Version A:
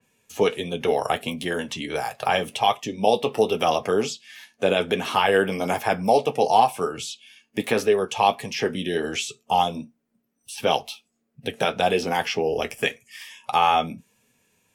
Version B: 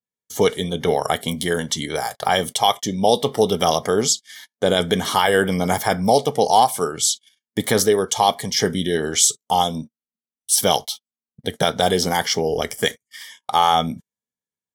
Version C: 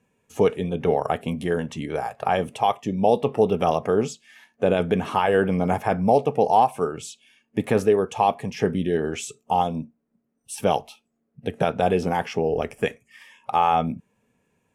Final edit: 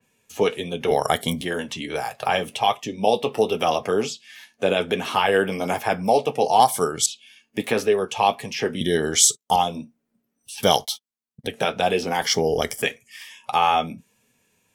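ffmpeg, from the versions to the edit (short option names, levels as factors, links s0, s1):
-filter_complex "[1:a]asplit=5[s0][s1][s2][s3][s4];[0:a]asplit=6[s5][s6][s7][s8][s9][s10];[s5]atrim=end=0.912[s11];[s0]atrim=start=0.908:end=1.412[s12];[s6]atrim=start=1.408:end=6.602[s13];[s1]atrim=start=6.598:end=7.062[s14];[s7]atrim=start=7.058:end=8.812[s15];[s2]atrim=start=8.808:end=9.562[s16];[s8]atrim=start=9.558:end=10.632[s17];[s3]atrim=start=10.628:end=11.472[s18];[s9]atrim=start=11.468:end=12.222[s19];[s4]atrim=start=12.218:end=12.822[s20];[s10]atrim=start=12.818[s21];[s11][s12]acrossfade=d=0.004:c1=hsin:c2=hsin[s22];[s22][s13]acrossfade=d=0.004:c1=hsin:c2=hsin[s23];[s23][s14]acrossfade=d=0.004:c1=hsin:c2=hsin[s24];[s24][s15]acrossfade=d=0.004:c1=hsin:c2=hsin[s25];[s25][s16]acrossfade=d=0.004:c1=hsin:c2=hsin[s26];[s26][s17]acrossfade=d=0.004:c1=hsin:c2=hsin[s27];[s27][s18]acrossfade=d=0.004:c1=hsin:c2=hsin[s28];[s28][s19]acrossfade=d=0.004:c1=hsin:c2=hsin[s29];[s29][s20]acrossfade=d=0.004:c1=hsin:c2=hsin[s30];[s30][s21]acrossfade=d=0.004:c1=hsin:c2=hsin"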